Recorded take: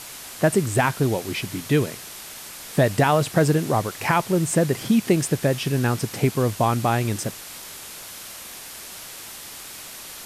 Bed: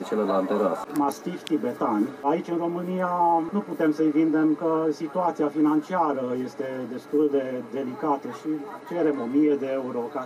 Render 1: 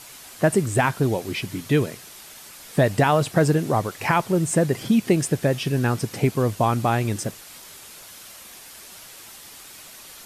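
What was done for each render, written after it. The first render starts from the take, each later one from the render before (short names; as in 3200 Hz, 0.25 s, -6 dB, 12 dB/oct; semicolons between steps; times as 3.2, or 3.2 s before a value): denoiser 6 dB, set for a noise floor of -39 dBFS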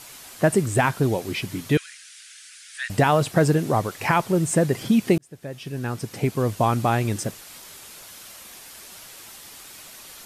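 1.77–2.9 Chebyshev band-pass 1500–9800 Hz, order 4; 5.18–6.65 fade in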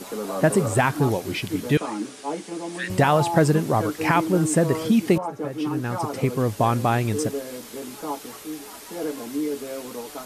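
add bed -6 dB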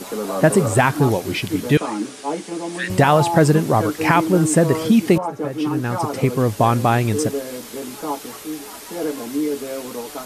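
gain +4.5 dB; limiter -3 dBFS, peak gain reduction 1.5 dB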